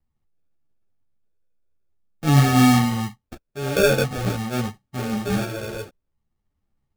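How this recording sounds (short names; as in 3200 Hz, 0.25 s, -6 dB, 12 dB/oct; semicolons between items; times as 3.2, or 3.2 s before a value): phasing stages 8, 0.48 Hz, lowest notch 220–1200 Hz; aliases and images of a low sample rate 1000 Hz, jitter 0%; a shimmering, thickened sound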